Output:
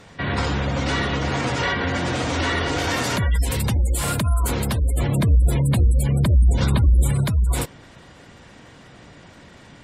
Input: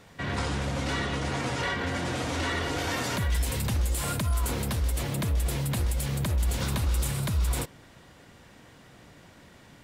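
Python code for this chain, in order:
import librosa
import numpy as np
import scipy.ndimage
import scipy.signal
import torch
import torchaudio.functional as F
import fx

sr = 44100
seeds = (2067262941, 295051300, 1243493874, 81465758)

y = fx.low_shelf(x, sr, hz=310.0, db=4.5, at=(4.96, 7.23), fade=0.02)
y = fx.spec_gate(y, sr, threshold_db=-30, keep='strong')
y = y * librosa.db_to_amplitude(7.0)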